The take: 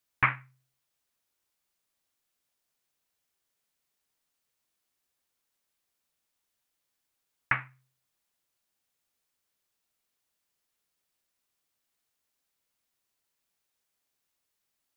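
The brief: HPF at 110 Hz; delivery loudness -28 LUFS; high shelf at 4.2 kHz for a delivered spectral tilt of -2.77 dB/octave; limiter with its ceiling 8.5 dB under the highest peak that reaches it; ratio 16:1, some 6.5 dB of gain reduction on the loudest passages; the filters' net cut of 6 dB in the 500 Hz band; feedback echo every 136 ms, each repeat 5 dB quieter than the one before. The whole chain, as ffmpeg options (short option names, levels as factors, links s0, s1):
-af "highpass=110,equalizer=f=500:t=o:g=-8,highshelf=f=4200:g=-9,acompressor=threshold=0.0447:ratio=16,alimiter=limit=0.0794:level=0:latency=1,aecho=1:1:136|272|408|544|680|816|952:0.562|0.315|0.176|0.0988|0.0553|0.031|0.0173,volume=5.62"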